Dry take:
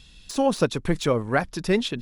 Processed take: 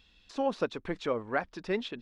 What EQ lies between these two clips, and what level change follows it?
head-to-tape spacing loss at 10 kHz 34 dB
spectral tilt +2.5 dB per octave
parametric band 140 Hz −9 dB 0.69 octaves
−3.5 dB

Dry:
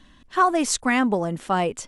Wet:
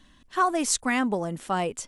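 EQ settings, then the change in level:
high-shelf EQ 6,500 Hz +7.5 dB
−4.5 dB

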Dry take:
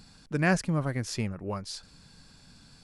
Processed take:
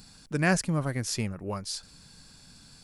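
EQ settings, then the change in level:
high-shelf EQ 6,400 Hz +10.5 dB
0.0 dB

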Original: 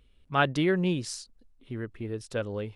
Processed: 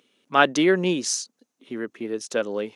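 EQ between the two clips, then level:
high-pass filter 220 Hz 24 dB per octave
parametric band 6,300 Hz +10.5 dB 0.34 octaves
+7.0 dB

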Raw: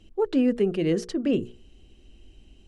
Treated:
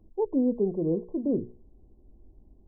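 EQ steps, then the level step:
linear-phase brick-wall low-pass 1,100 Hz
−3.0 dB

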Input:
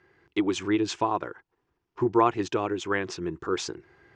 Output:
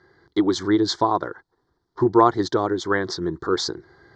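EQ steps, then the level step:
Butterworth band-reject 2,600 Hz, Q 1.5
high-frequency loss of the air 68 metres
parametric band 4,300 Hz +9.5 dB 0.66 octaves
+6.0 dB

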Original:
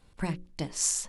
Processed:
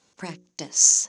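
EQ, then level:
high-pass filter 230 Hz 12 dB per octave
low-pass with resonance 6,400 Hz, resonance Q 8.2
0.0 dB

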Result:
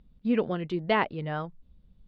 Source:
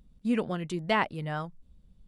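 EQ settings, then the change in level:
low-pass filter 4,300 Hz 24 dB per octave
dynamic equaliser 420 Hz, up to +5 dB, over −44 dBFS, Q 1.4
0.0 dB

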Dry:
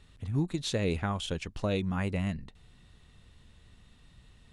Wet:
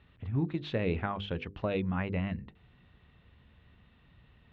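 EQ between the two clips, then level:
high-pass filter 54 Hz
low-pass filter 3,000 Hz 24 dB per octave
mains-hum notches 50/100/150/200/250/300/350/400/450/500 Hz
0.0 dB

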